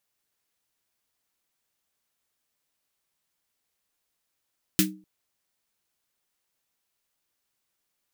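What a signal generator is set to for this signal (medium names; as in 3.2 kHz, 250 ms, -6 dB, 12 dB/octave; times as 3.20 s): snare drum length 0.25 s, tones 190 Hz, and 310 Hz, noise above 1.6 kHz, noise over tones 3 dB, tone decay 0.37 s, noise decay 0.15 s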